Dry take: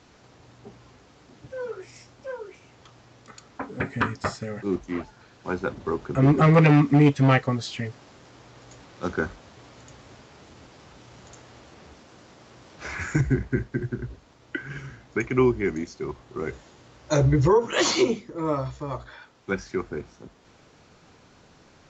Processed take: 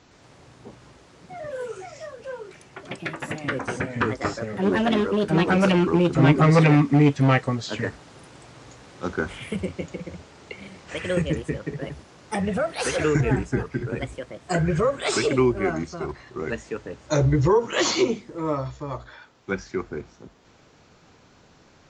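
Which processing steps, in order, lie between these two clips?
ever faster or slower copies 111 ms, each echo +3 st, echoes 2

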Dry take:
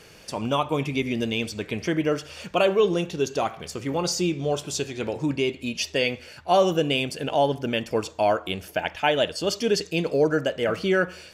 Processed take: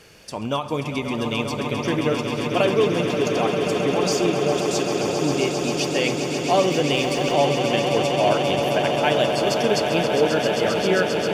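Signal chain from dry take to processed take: echo with a slow build-up 133 ms, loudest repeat 8, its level -9.5 dB; 6.92–7.33 s: added noise pink -50 dBFS; endings held to a fixed fall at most 180 dB/s

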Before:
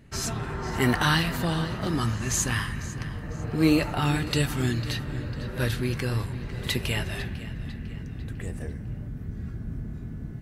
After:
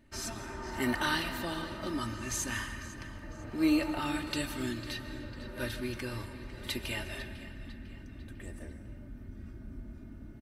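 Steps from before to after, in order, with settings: peaking EQ 65 Hz -4 dB 2.8 oct; band-stop 6.9 kHz, Q 14; comb 3.3 ms, depth 67%; reverberation RT60 1.3 s, pre-delay 100 ms, DRR 11.5 dB; trim -8.5 dB

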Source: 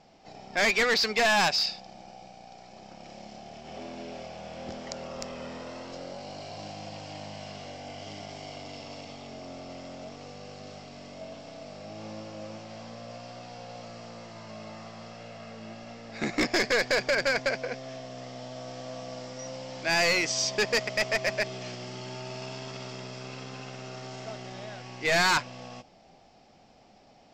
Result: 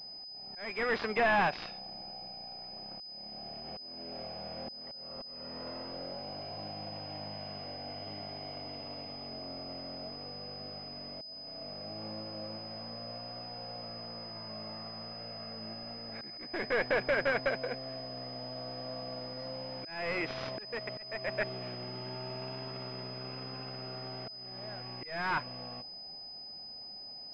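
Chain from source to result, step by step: slow attack 448 ms; class-D stage that switches slowly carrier 5 kHz; trim -2.5 dB

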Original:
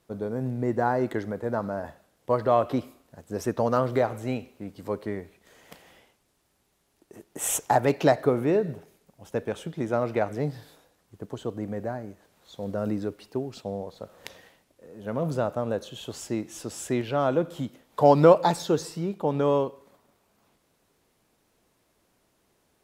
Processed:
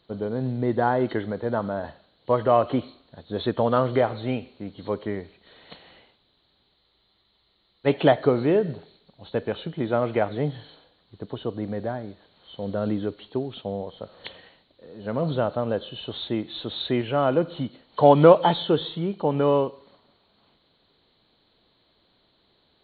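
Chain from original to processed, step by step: knee-point frequency compression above 2.9 kHz 4:1; spectral freeze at 6.78 s, 1.08 s; trim +2.5 dB

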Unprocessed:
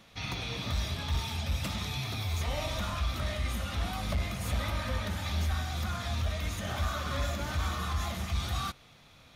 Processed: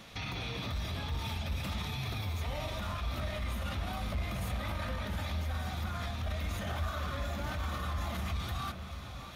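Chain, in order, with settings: dynamic bell 6.7 kHz, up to -6 dB, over -55 dBFS, Q 0.76; peak limiter -35.5 dBFS, peak gain reduction 11.5 dB; on a send: echo whose repeats swap between lows and highs 593 ms, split 1.1 kHz, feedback 63%, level -8 dB; on the sum: trim +6 dB

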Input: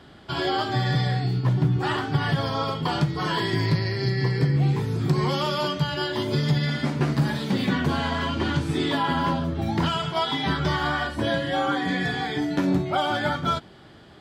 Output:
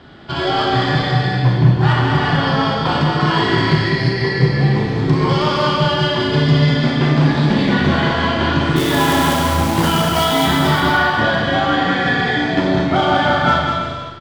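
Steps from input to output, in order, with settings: low-pass 4.7 kHz 12 dB/octave; 8.76–10.47 s: companded quantiser 4-bit; Chebyshev shaper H 6 -27 dB, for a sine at -11 dBFS; on a send: bouncing-ball echo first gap 200 ms, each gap 0.7×, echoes 5; on the sum: Schroeder reverb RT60 0.95 s, combs from 26 ms, DRR 1.5 dB; trim +5.5 dB

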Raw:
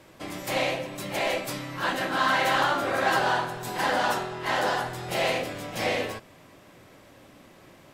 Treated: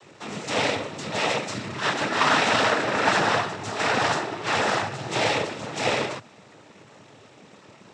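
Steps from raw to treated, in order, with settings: half-wave rectifier; noise-vocoded speech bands 12; trim +8 dB

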